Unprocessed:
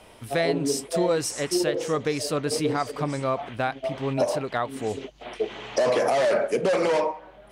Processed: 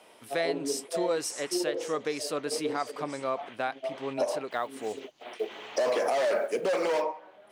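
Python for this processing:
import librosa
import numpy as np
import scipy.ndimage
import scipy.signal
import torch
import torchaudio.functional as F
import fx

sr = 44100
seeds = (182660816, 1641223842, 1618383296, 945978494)

y = fx.block_float(x, sr, bits=7, at=(4.51, 7.03))
y = scipy.signal.sosfilt(scipy.signal.butter(2, 290.0, 'highpass', fs=sr, output='sos'), y)
y = F.gain(torch.from_numpy(y), -4.5).numpy()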